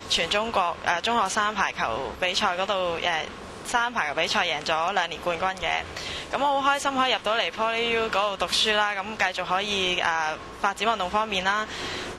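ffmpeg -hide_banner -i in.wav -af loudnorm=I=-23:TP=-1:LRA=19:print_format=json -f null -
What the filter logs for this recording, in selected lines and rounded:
"input_i" : "-24.9",
"input_tp" : "-7.6",
"input_lra" : "2.1",
"input_thresh" : "-34.9",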